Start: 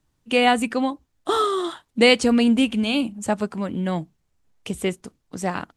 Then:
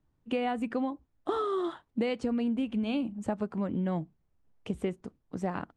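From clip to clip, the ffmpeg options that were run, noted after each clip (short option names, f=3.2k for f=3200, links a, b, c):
-af "lowpass=f=1k:p=1,acompressor=threshold=-24dB:ratio=12,volume=-2.5dB"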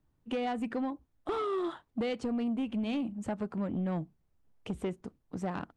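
-af "asoftclip=type=tanh:threshold=-26.5dB"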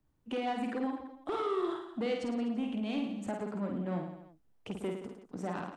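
-filter_complex "[0:a]acrossover=split=170[a][b];[a]acompressor=threshold=-53dB:ratio=6[c];[b]aecho=1:1:50|107.5|173.6|249.7|337.1:0.631|0.398|0.251|0.158|0.1[d];[c][d]amix=inputs=2:normalize=0,volume=-2dB"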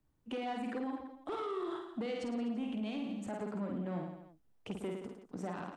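-af "alimiter=level_in=4.5dB:limit=-24dB:level=0:latency=1:release=60,volume=-4.5dB,volume=-1.5dB"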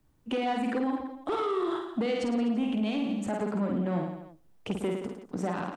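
-filter_complex "[0:a]asplit=2[a][b];[b]adelay=111,lowpass=f=1.1k:p=1,volume=-24dB,asplit=2[c][d];[d]adelay=111,lowpass=f=1.1k:p=1,volume=0.46,asplit=2[e][f];[f]adelay=111,lowpass=f=1.1k:p=1,volume=0.46[g];[a][c][e][g]amix=inputs=4:normalize=0,volume=9dB"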